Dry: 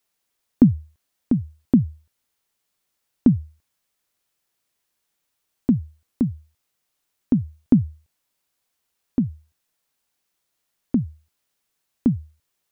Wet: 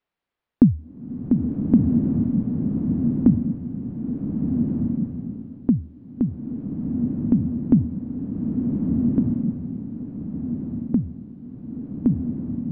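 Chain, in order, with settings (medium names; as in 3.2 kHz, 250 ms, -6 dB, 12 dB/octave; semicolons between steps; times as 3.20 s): distance through air 370 m; swelling reverb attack 1500 ms, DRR -1 dB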